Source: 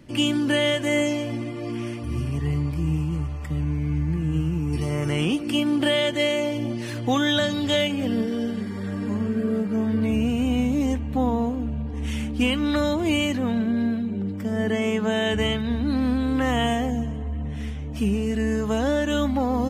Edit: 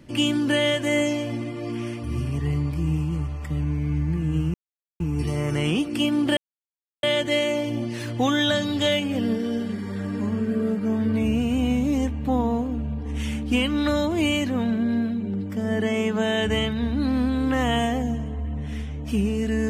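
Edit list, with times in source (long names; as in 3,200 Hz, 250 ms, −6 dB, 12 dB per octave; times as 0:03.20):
0:04.54: splice in silence 0.46 s
0:05.91: splice in silence 0.66 s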